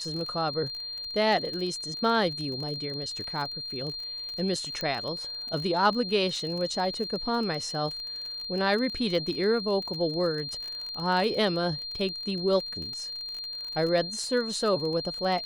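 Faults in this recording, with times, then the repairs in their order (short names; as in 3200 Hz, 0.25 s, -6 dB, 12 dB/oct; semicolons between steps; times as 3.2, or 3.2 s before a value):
crackle 31/s -33 dBFS
tone 4200 Hz -34 dBFS
4.81 pop -18 dBFS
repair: de-click; notch 4200 Hz, Q 30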